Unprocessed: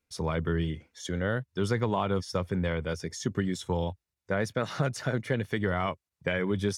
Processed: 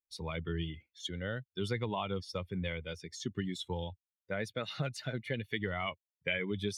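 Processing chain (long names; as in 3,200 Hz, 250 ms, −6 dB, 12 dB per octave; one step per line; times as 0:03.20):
spectral dynamics exaggerated over time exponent 1.5
pitch vibrato 0.8 Hz 10 cents
reversed playback
upward compression, threshold −39 dBFS
reversed playback
flat-topped bell 3,000 Hz +9.5 dB 1.3 octaves
level −5.5 dB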